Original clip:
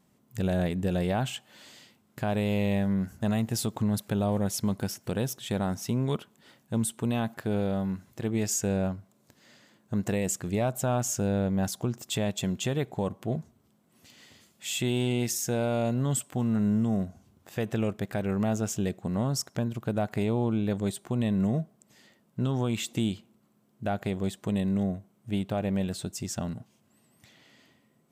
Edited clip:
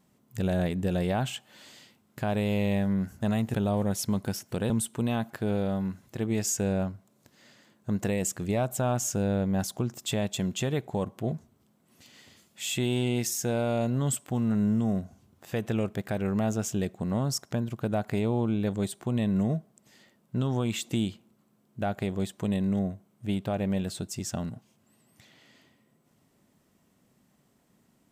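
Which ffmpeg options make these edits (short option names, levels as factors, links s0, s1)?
-filter_complex "[0:a]asplit=3[s0][s1][s2];[s0]atrim=end=3.542[s3];[s1]atrim=start=4.088:end=5.252[s4];[s2]atrim=start=6.738[s5];[s3][s4]acrossfade=d=0.004:c1=hsin:c2=hsin[s6];[s6][s5]acrossfade=d=0.004:c1=hsin:c2=hsin"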